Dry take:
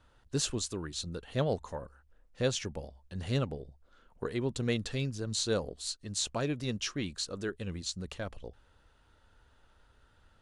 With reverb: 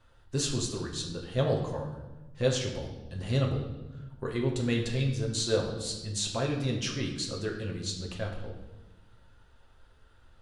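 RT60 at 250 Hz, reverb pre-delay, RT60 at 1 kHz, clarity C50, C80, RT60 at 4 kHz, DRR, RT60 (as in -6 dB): 1.7 s, 6 ms, 1.0 s, 5.5 dB, 8.0 dB, 0.95 s, -1.0 dB, 1.1 s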